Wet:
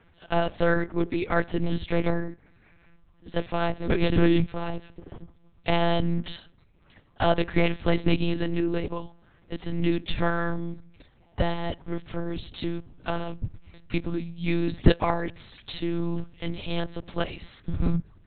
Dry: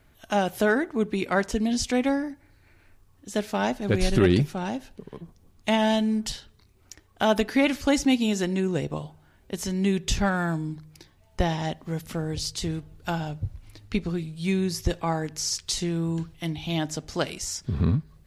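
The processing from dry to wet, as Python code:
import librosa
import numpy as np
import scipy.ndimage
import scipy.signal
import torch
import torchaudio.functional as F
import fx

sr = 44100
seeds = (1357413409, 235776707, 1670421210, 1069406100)

y = fx.lpc_monotone(x, sr, seeds[0], pitch_hz=170.0, order=8)
y = fx.hpss(y, sr, part='percussive', gain_db=9, at=(14.66, 15.33), fade=0.02)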